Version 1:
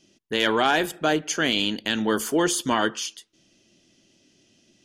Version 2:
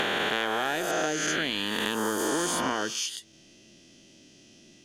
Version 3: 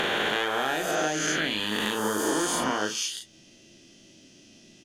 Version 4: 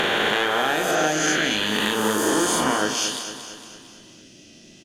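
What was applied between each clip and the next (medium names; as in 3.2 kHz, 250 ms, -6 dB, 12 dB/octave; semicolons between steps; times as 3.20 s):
reverse spectral sustain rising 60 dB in 2.27 s; compression 6:1, threshold -28 dBFS, peak gain reduction 14.5 dB; endings held to a fixed fall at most 330 dB/s; trim +2.5 dB
doubling 38 ms -5 dB
feedback delay 228 ms, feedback 53%, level -10 dB; trim +5 dB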